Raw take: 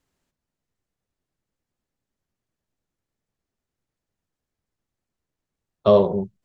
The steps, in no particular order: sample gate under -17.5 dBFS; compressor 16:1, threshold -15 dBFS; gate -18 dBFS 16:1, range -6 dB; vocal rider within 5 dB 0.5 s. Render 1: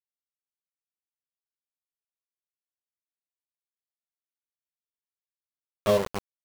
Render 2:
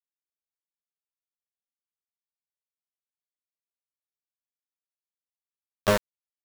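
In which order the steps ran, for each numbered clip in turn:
sample gate > vocal rider > compressor > gate; compressor > gate > sample gate > vocal rider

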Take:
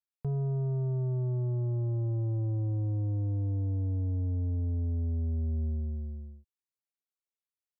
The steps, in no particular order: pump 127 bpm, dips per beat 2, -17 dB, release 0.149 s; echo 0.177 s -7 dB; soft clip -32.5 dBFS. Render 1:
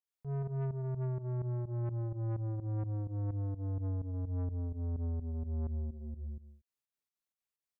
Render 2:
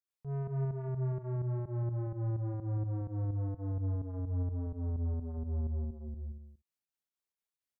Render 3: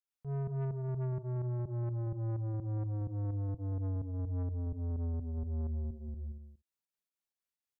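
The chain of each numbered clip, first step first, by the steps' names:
echo > pump > soft clip; pump > soft clip > echo; pump > echo > soft clip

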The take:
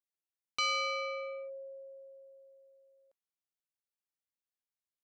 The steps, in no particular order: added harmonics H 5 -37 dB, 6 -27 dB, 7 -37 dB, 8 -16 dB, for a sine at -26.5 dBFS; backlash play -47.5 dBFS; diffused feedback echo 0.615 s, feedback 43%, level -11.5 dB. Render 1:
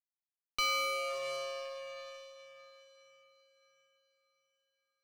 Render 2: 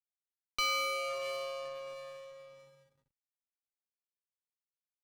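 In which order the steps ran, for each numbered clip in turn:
backlash > diffused feedback echo > added harmonics; diffused feedback echo > backlash > added harmonics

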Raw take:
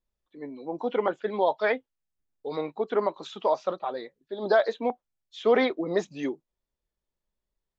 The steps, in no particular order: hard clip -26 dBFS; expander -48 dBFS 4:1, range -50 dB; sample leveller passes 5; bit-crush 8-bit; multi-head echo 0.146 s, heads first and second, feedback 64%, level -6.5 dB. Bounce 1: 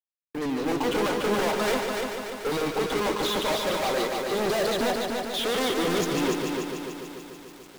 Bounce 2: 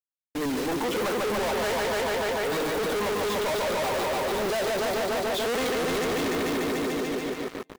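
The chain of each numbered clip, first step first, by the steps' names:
sample leveller > hard clip > multi-head echo > bit-crush > expander; bit-crush > multi-head echo > expander > sample leveller > hard clip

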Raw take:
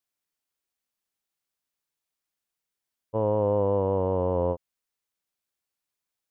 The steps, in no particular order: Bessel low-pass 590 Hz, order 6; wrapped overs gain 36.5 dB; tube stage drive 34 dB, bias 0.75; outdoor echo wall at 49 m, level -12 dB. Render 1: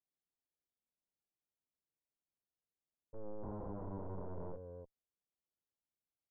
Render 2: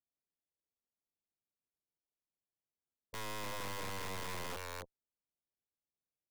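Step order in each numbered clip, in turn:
tube stage > outdoor echo > wrapped overs > Bessel low-pass; outdoor echo > tube stage > Bessel low-pass > wrapped overs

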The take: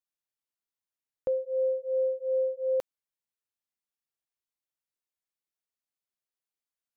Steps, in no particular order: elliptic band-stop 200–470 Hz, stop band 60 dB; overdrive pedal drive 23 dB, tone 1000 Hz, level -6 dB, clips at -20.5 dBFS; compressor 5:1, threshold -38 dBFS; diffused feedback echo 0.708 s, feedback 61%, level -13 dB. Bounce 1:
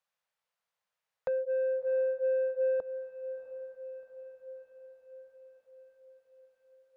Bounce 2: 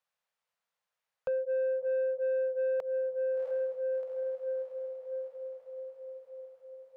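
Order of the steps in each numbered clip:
compressor > elliptic band-stop > overdrive pedal > diffused feedback echo; diffused feedback echo > compressor > overdrive pedal > elliptic band-stop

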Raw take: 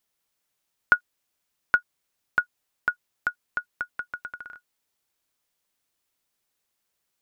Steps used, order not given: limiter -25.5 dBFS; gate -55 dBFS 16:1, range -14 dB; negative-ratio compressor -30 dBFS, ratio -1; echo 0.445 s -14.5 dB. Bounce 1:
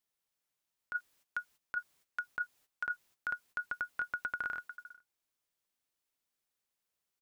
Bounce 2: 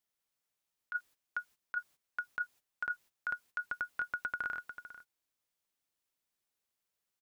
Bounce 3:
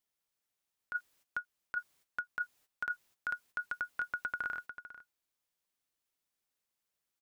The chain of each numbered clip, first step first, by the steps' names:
echo > gate > negative-ratio compressor > limiter; echo > negative-ratio compressor > limiter > gate; gate > echo > negative-ratio compressor > limiter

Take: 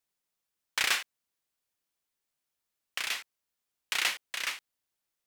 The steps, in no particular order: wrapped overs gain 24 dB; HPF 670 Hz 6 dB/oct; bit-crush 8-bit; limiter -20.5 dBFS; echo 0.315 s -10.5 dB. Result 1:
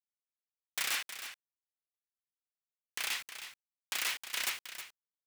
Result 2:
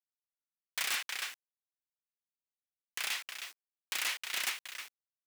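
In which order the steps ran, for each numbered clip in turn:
limiter > wrapped overs > HPF > bit-crush > echo; echo > limiter > bit-crush > wrapped overs > HPF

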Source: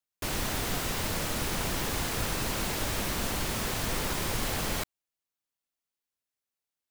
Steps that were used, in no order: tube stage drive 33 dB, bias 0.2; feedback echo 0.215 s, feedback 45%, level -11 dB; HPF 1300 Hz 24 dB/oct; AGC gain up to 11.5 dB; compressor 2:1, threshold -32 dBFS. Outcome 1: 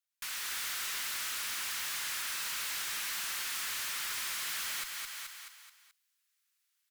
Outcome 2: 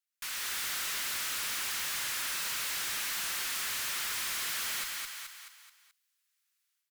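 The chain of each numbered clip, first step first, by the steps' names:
feedback echo > AGC > compressor > HPF > tube stage; HPF > compressor > AGC > feedback echo > tube stage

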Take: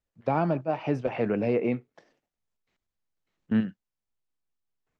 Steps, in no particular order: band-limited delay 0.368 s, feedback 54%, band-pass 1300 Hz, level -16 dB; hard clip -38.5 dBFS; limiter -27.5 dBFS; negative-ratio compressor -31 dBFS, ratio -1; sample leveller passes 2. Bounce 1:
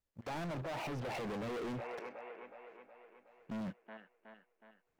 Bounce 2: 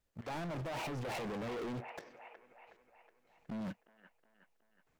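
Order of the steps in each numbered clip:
sample leveller > band-limited delay > limiter > negative-ratio compressor > hard clip; sample leveller > negative-ratio compressor > band-limited delay > hard clip > limiter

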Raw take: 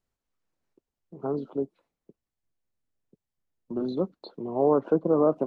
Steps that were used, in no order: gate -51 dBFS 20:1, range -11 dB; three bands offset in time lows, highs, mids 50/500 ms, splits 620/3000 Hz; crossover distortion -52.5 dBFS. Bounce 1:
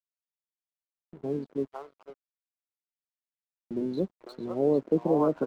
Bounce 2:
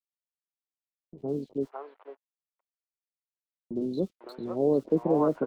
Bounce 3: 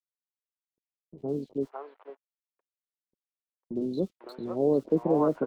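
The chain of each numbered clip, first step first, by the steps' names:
gate > three bands offset in time > crossover distortion; gate > crossover distortion > three bands offset in time; crossover distortion > gate > three bands offset in time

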